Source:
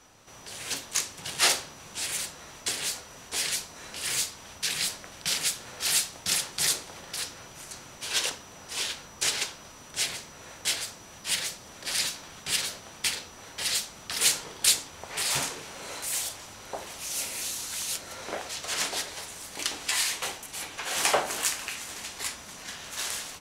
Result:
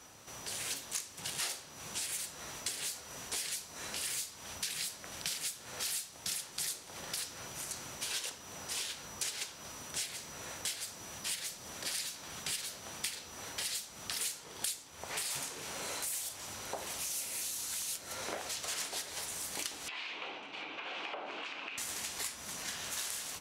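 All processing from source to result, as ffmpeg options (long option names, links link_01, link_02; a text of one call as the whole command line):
ffmpeg -i in.wav -filter_complex "[0:a]asettb=1/sr,asplit=3[link_01][link_02][link_03];[link_01]atrim=end=19.884[link_04];[link_02]atrim=start=19.88:end=21.78,asetpts=PTS-STARTPTS,afade=type=in:duration=0.004:curve=qsin,afade=type=out:start_time=1.896:duration=0.004:curve=qsin,highpass=250,equalizer=frequency=300:width_type=q:width=4:gain=5,equalizer=frequency=1800:width_type=q:width=4:gain=-7,equalizer=frequency=2500:width_type=q:width=4:gain=4,lowpass=frequency=3200:width=0.5412,lowpass=frequency=3200:width=1.3066,acompressor=threshold=-39dB:ratio=4:attack=3.2:release=140:knee=1:detection=peak[link_05];[link_03]atrim=start=21.776[link_06];[link_04][link_05]acrossfade=duration=0.004:curve1=hsin:curve2=qsin[link_07];[link_07][link_06]acrossfade=duration=0.004:curve1=qsin:curve2=hsin,highpass=46,highshelf=frequency=7600:gain=7.5,acompressor=threshold=-36dB:ratio=6" out.wav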